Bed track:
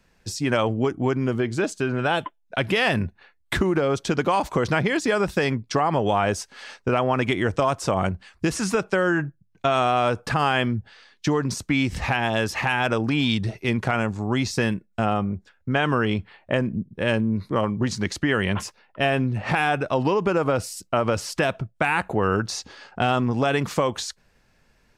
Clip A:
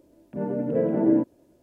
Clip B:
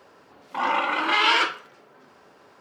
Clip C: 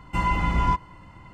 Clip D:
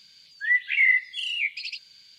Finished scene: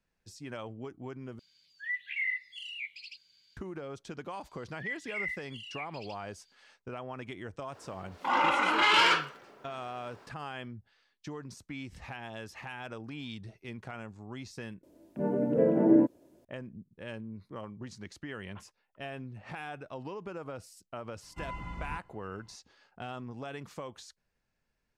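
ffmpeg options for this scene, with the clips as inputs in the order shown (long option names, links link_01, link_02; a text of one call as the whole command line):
ffmpeg -i bed.wav -i cue0.wav -i cue1.wav -i cue2.wav -i cue3.wav -filter_complex "[4:a]asplit=2[link_01][link_02];[0:a]volume=-19.5dB[link_03];[2:a]asoftclip=type=tanh:threshold=-12.5dB[link_04];[1:a]lowshelf=frequency=72:gain=-9[link_05];[link_03]asplit=3[link_06][link_07][link_08];[link_06]atrim=end=1.394[link_09];[link_01]atrim=end=2.18,asetpts=PTS-STARTPTS,volume=-13dB[link_10];[link_07]atrim=start=3.566:end=14.834[link_11];[link_05]atrim=end=1.62,asetpts=PTS-STARTPTS,volume=-1dB[link_12];[link_08]atrim=start=16.446[link_13];[link_02]atrim=end=2.18,asetpts=PTS-STARTPTS,volume=-16.5dB,afade=type=in:duration=0.004:curve=hsin,afade=type=out:start_time=2.176:duration=0.004:curve=hsin,adelay=192717S[link_14];[link_04]atrim=end=2.6,asetpts=PTS-STARTPTS,volume=-2dB,afade=type=in:duration=0.05,afade=type=out:start_time=2.55:duration=0.05,adelay=339570S[link_15];[3:a]atrim=end=1.33,asetpts=PTS-STARTPTS,volume=-17.5dB,afade=type=in:duration=0.004:curve=hsin,afade=type=out:start_time=1.326:duration=0.004:curve=hsin,adelay=21230[link_16];[link_09][link_10]acrossfade=duration=0.004:curve1=hsin:curve2=hsin[link_17];[link_17][link_11]acrossfade=duration=0.004:curve1=hsin:curve2=hsin[link_18];[link_18][link_12]acrossfade=duration=0.004:curve1=hsin:curve2=hsin[link_19];[link_19][link_13]acrossfade=duration=0.004:curve1=hsin:curve2=hsin[link_20];[link_20][link_14][link_15][link_16]amix=inputs=4:normalize=0" out.wav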